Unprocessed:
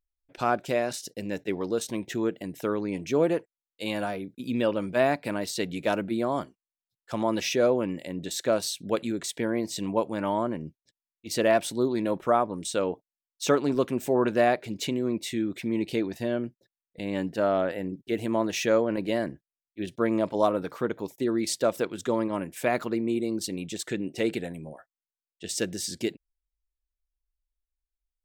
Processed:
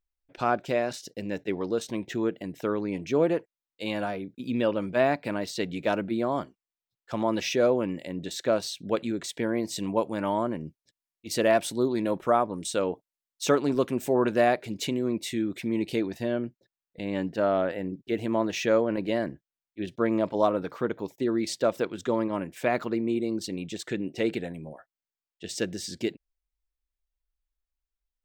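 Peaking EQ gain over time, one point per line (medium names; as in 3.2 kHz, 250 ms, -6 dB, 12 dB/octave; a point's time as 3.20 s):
peaking EQ 11 kHz 1.1 oct
7.19 s -10.5 dB
7.75 s -3.5 dB
8.46 s -11 dB
9.01 s -11 dB
9.74 s 0 dB
15.98 s 0 dB
16.44 s -10.5 dB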